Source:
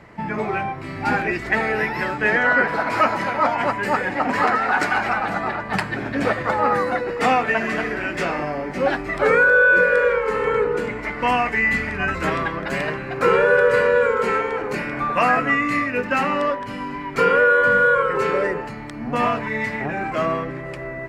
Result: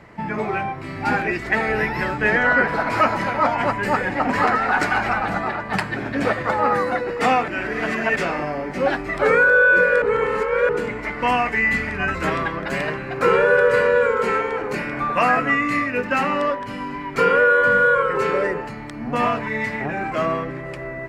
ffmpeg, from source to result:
-filter_complex "[0:a]asettb=1/sr,asplit=3[s0][s1][s2];[s0]atrim=end=1.684[s3];[s1]atrim=start=1.68:end=5.42,asetpts=PTS-STARTPTS,afade=t=in:d=0.004:c=qsin,afade=t=out:st=3.736:d=0.004:c=qsin,lowshelf=f=110:g=10[s4];[s2]atrim=start=5.416[s5];[s3][s4]acrossfade=d=0.004:c1=hsin:c2=qsin[s6];[s6][s5]acrossfade=d=0.004:c1=qsin:c2=hsin,asplit=5[s7][s8][s9][s10][s11];[s7]atrim=end=7.482[s12];[s8]atrim=start=7.478:end=8.162,asetpts=PTS-STARTPTS,areverse[s13];[s9]atrim=start=8.158:end=10.022[s14];[s10]atrim=start=10.018:end=10.692,asetpts=PTS-STARTPTS,areverse[s15];[s11]atrim=start=10.688[s16];[s12][s13]acrossfade=d=0.004:c1=hsin:c2=hsin[s17];[s17][s14]acrossfade=d=0.004:c1=hsin:c2=hsin[s18];[s18][s15]acrossfade=d=0.004:c1=hsin:c2=hsin[s19];[s19][s16]acrossfade=d=0.004:c1=hsin:c2=hsin"

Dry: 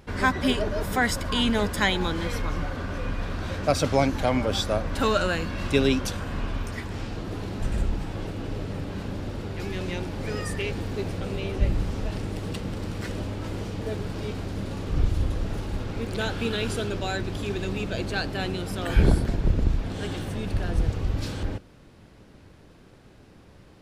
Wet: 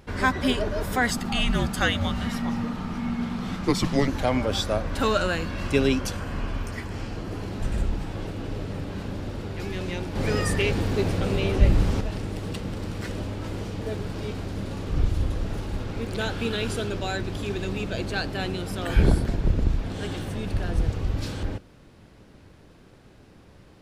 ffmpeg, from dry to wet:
-filter_complex "[0:a]asettb=1/sr,asplit=3[s0][s1][s2];[s0]atrim=end=1.104[s3];[s1]atrim=start=1.1:end=4.08,asetpts=PTS-STARTPTS,afade=t=in:d=0.004:c=qsin,afade=t=out:st=2.976:d=0.004:c=qsin,afreqshift=-270[s4];[s2]atrim=start=4.076[s5];[s3][s4]acrossfade=d=0.004:c1=hsin:c2=qsin[s6];[s6][s5]acrossfade=d=0.004:c1=qsin:c2=hsin,asettb=1/sr,asplit=3[s7][s8][s9];[s7]atrim=end=5.604[s10];[s8]atrim=start=5.6:end=7.52,asetpts=PTS-STARTPTS,afade=t=in:d=0.004:c=qsin,afade=t=out:st=1.916:d=0.004:c=qsin,bandreject=f=3700:w=10[s11];[s9]atrim=start=7.516[s12];[s10][s11]acrossfade=d=0.004:c1=hsin:c2=qsin[s13];[s13][s12]acrossfade=d=0.004:c1=qsin:c2=hsin,asettb=1/sr,asplit=3[s14][s15][s16];[s14]atrim=end=10.154[s17];[s15]atrim=start=10.15:end=12.01,asetpts=PTS-STARTPTS,afade=t=in:d=0.004:c=qsin,afade=t=out:st=1.856:d=0.004:c=qsin,acontrast=46[s18];[s16]atrim=start=12.006[s19];[s17][s18]acrossfade=d=0.004:c1=hsin:c2=qsin[s20];[s20][s19]acrossfade=d=0.004:c1=qsin:c2=hsin"

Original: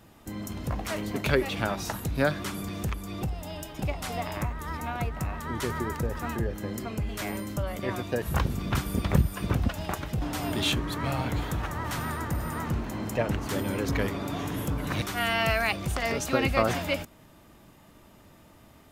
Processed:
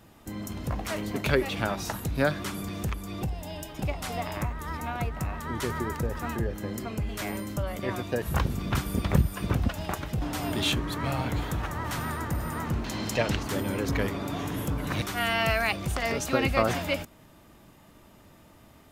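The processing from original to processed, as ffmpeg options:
-filter_complex "[0:a]asettb=1/sr,asplit=3[s0][s1][s2];[s0]atrim=end=3.234[s3];[s1]atrim=start=3.23:end=3.69,asetpts=PTS-STARTPTS,afade=t=in:d=0.004:c=qsin,afade=t=out:st=0.456:d=0.004:c=qsin,asuperstop=centerf=1300:order=4:qfactor=7.5[s4];[s2]atrim=start=3.686[s5];[s3][s4]acrossfade=d=0.004:c1=hsin:c2=qsin[s6];[s6][s5]acrossfade=d=0.004:c1=qsin:c2=hsin,asettb=1/sr,asplit=3[s7][s8][s9];[s7]atrim=end=12.844[s10];[s8]atrim=start=12.84:end=13.43,asetpts=PTS-STARTPTS,afade=t=in:d=0.004:c=qsin,afade=t=out:st=0.586:d=0.004:c=qsin,equalizer=f=4400:t=o:w=1.7:g=13[s11];[s9]atrim=start=13.426[s12];[s10][s11]acrossfade=d=0.004:c1=hsin:c2=qsin[s13];[s13][s12]acrossfade=d=0.004:c1=qsin:c2=hsin"

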